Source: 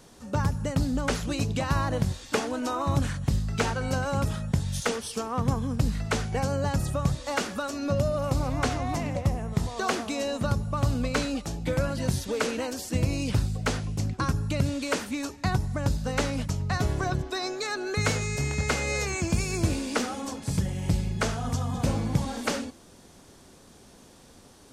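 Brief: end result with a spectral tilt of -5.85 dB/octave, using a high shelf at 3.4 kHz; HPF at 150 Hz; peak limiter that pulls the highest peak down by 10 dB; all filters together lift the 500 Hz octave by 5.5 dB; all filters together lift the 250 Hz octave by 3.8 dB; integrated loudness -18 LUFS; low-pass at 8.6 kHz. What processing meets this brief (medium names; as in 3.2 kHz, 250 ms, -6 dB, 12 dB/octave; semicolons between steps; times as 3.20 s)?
high-pass 150 Hz; low-pass 8.6 kHz; peaking EQ 250 Hz +4.5 dB; peaking EQ 500 Hz +5.5 dB; treble shelf 3.4 kHz -5.5 dB; trim +11 dB; peak limiter -7 dBFS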